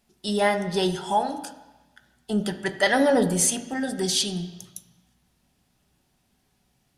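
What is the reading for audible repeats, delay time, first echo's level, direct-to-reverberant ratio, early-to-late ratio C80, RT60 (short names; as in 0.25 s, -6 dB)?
none, none, none, 7.0 dB, 13.0 dB, 1.1 s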